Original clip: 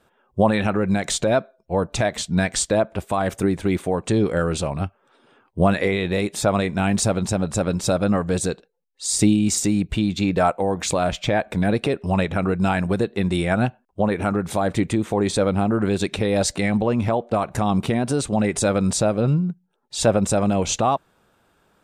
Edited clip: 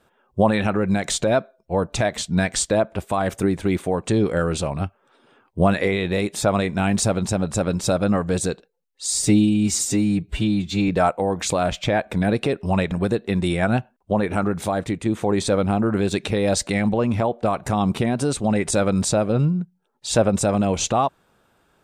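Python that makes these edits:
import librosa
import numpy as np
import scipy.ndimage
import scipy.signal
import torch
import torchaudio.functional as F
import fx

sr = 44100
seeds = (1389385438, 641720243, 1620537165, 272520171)

y = fx.edit(x, sr, fx.stretch_span(start_s=9.1, length_s=1.19, factor=1.5),
    fx.cut(start_s=12.32, length_s=0.48),
    fx.fade_out_to(start_s=14.48, length_s=0.46, floor_db=-6.5), tone=tone)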